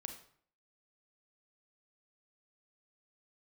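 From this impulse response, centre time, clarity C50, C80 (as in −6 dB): 17 ms, 7.5 dB, 11.5 dB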